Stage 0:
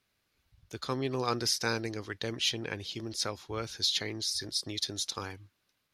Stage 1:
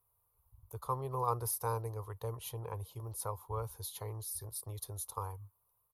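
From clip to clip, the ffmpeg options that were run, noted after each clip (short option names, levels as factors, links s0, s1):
-af "firequalizer=gain_entry='entry(110,0);entry(190,-20);entry(290,-25);entry(450,-5);entry(660,-9);entry(1000,4);entry(1600,-25);entry(2800,-25);entry(5300,-27);entry(11000,7)':delay=0.05:min_phase=1,volume=1.41"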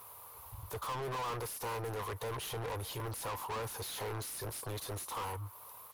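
-filter_complex "[0:a]acompressor=threshold=0.002:ratio=2,asplit=2[s0][s1];[s1]highpass=f=720:p=1,volume=70.8,asoftclip=type=tanh:threshold=0.02[s2];[s0][s2]amix=inputs=2:normalize=0,lowpass=f=4800:p=1,volume=0.501,volume=1.33"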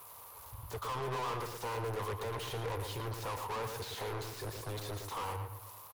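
-filter_complex "[0:a]asplit=2[s0][s1];[s1]adelay=114,lowpass=f=3000:p=1,volume=0.531,asplit=2[s2][s3];[s3]adelay=114,lowpass=f=3000:p=1,volume=0.39,asplit=2[s4][s5];[s5]adelay=114,lowpass=f=3000:p=1,volume=0.39,asplit=2[s6][s7];[s7]adelay=114,lowpass=f=3000:p=1,volume=0.39,asplit=2[s8][s9];[s9]adelay=114,lowpass=f=3000:p=1,volume=0.39[s10];[s0][s2][s4][s6][s8][s10]amix=inputs=6:normalize=0,acrossover=split=280|7700[s11][s12][s13];[s13]aeval=exprs='(mod(224*val(0)+1,2)-1)/224':c=same[s14];[s11][s12][s14]amix=inputs=3:normalize=0"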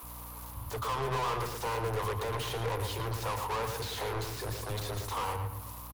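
-filter_complex "[0:a]aeval=exprs='val(0)+0.00282*(sin(2*PI*60*n/s)+sin(2*PI*2*60*n/s)/2+sin(2*PI*3*60*n/s)/3+sin(2*PI*4*60*n/s)/4+sin(2*PI*5*60*n/s)/5)':c=same,acrossover=split=270[s0][s1];[s0]adelay=30[s2];[s2][s1]amix=inputs=2:normalize=0,volume=1.78"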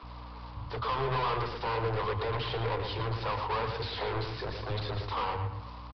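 -af "aresample=11025,aresample=44100,flanger=delay=0.5:depth=6.7:regen=-66:speed=0.82:shape=triangular,volume=2"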